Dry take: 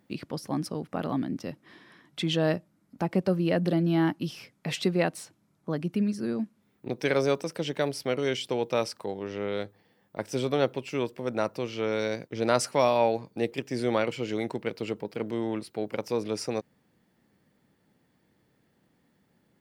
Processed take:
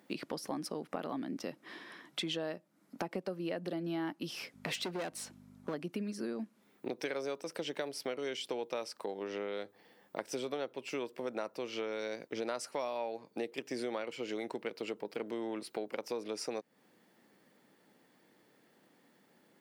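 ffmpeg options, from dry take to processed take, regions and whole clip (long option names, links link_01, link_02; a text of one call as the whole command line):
ffmpeg -i in.wav -filter_complex "[0:a]asettb=1/sr,asplit=3[link_01][link_02][link_03];[link_01]atrim=end=4.544[link_04];[link_02]atrim=start=4.54:end=5.74,asetpts=PTS-STARTPTS,afade=type=in:duration=0.004:curve=qsin,afade=type=out:start_time=1.196:duration=0.004:curve=qsin,aeval=exprs='val(0)+0.00562*(sin(2*PI*50*n/s)+sin(2*PI*2*50*n/s)/2+sin(2*PI*3*50*n/s)/3+sin(2*PI*4*50*n/s)/4+sin(2*PI*5*50*n/s)/5)':channel_layout=same,volume=26.5dB,asoftclip=hard,volume=-26.5dB[link_05];[link_03]atrim=start=5.736[link_06];[link_04][link_05]acrossfade=duration=0.004:curve1=hsin:curve2=qsin[link_07];[link_07][link_06]acrossfade=duration=0.004:curve1=qsin:curve2=hsin,highpass=280,acompressor=threshold=-40dB:ratio=6,volume=4.5dB" out.wav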